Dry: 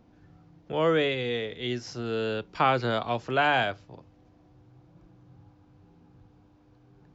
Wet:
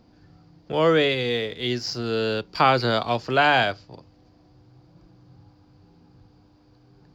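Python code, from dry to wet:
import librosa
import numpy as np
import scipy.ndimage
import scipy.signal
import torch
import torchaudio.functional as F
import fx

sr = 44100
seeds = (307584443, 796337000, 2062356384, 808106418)

p1 = fx.peak_eq(x, sr, hz=4700.0, db=14.5, octaves=0.33)
p2 = np.sign(p1) * np.maximum(np.abs(p1) - 10.0 ** (-43.5 / 20.0), 0.0)
p3 = p1 + (p2 * librosa.db_to_amplitude(-9.5))
y = p3 * librosa.db_to_amplitude(2.5)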